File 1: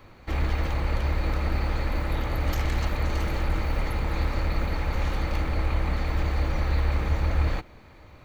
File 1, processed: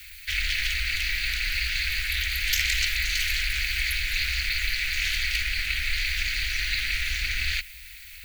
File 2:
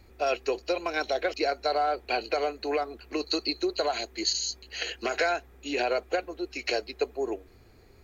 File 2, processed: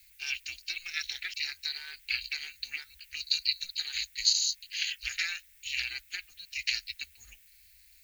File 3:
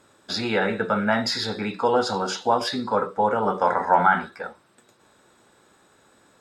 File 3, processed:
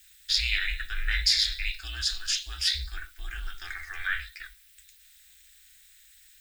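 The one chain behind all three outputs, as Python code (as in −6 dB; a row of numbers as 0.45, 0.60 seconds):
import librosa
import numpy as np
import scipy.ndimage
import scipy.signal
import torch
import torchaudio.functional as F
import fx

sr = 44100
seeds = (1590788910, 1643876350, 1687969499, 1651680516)

y = fx.low_shelf(x, sr, hz=190.0, db=-6.0)
y = fx.dmg_noise_colour(y, sr, seeds[0], colour='violet', level_db=-63.0)
y = y * np.sin(2.0 * np.pi * 180.0 * np.arange(len(y)) / sr)
y = scipy.signal.sosfilt(scipy.signal.cheby2(4, 40, [110.0, 1100.0], 'bandstop', fs=sr, output='sos'), y)
y = librosa.util.normalize(y) * 10.0 ** (-9 / 20.0)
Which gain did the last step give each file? +18.5, +5.5, +7.5 decibels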